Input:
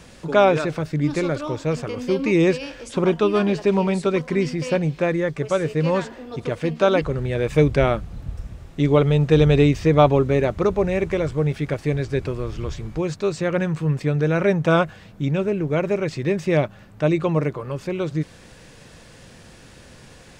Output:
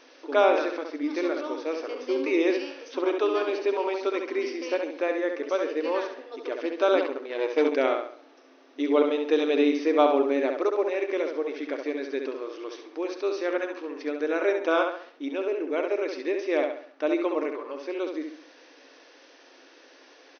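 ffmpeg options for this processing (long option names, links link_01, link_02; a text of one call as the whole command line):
ffmpeg -i in.wav -filter_complex "[0:a]asplit=2[link_01][link_02];[link_02]adelay=68,lowpass=frequency=4700:poles=1,volume=-5dB,asplit=2[link_03][link_04];[link_04]adelay=68,lowpass=frequency=4700:poles=1,volume=0.41,asplit=2[link_05][link_06];[link_06]adelay=68,lowpass=frequency=4700:poles=1,volume=0.41,asplit=2[link_07][link_08];[link_08]adelay=68,lowpass=frequency=4700:poles=1,volume=0.41,asplit=2[link_09][link_10];[link_10]adelay=68,lowpass=frequency=4700:poles=1,volume=0.41[link_11];[link_01][link_03][link_05][link_07][link_09][link_11]amix=inputs=6:normalize=0,asettb=1/sr,asplit=3[link_12][link_13][link_14];[link_12]atrim=end=7.024[link_15];[link_13]atrim=start=7.02:end=7.74,asetpts=PTS-STARTPTS,afade=type=in:duration=0.004:curve=qsin,afade=type=out:start_time=0.716:duration=0.004:curve=qsin,aeval=exprs='0.562*(cos(1*acos(clip(val(0)/0.562,-1,1)))-cos(1*PI/2))+0.0398*(cos(6*acos(clip(val(0)/0.562,-1,1)))-cos(6*PI/2))+0.0251*(cos(7*acos(clip(val(0)/0.562,-1,1)))-cos(7*PI/2))':channel_layout=same[link_16];[link_14]atrim=start=7.736[link_17];[link_15][link_16]acrossfade=duration=0.004:curve1=hsin:curve2=qsin[link_18];[link_18][link_17]acrossfade=duration=0.004:curve1=qsin:curve2=hsin,afftfilt=real='re*between(b*sr/4096,250,6300)':imag='im*between(b*sr/4096,250,6300)':win_size=4096:overlap=0.75,volume=-5.5dB" out.wav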